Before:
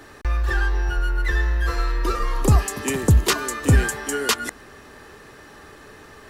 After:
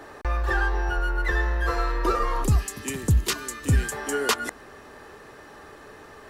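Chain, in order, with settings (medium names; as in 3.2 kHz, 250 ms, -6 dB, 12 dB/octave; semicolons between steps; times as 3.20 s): peaking EQ 700 Hz +10 dB 2.2 oct, from 2.44 s -7 dB, from 3.92 s +6 dB; trim -4.5 dB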